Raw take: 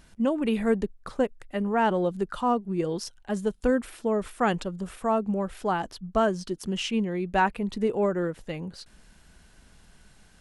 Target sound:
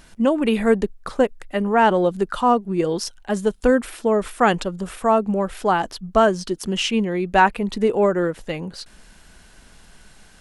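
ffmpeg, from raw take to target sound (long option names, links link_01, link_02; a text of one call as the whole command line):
ffmpeg -i in.wav -af "equalizer=frequency=93:width_type=o:width=2.8:gain=-5.5,volume=8.5dB" out.wav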